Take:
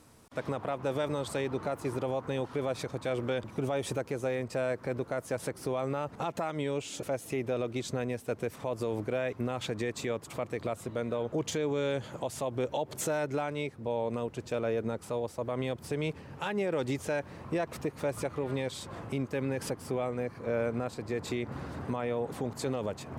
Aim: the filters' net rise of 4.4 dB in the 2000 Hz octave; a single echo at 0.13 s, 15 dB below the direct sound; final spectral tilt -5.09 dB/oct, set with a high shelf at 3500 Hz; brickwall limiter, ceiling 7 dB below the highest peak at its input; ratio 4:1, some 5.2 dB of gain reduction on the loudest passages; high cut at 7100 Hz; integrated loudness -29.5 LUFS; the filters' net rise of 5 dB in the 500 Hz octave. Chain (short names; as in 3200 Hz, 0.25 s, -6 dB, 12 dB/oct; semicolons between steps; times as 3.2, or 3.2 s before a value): LPF 7100 Hz; bell 500 Hz +5.5 dB; bell 2000 Hz +4.5 dB; high shelf 3500 Hz +3 dB; compressor 4:1, threshold -29 dBFS; limiter -25.5 dBFS; echo 0.13 s -15 dB; gain +6.5 dB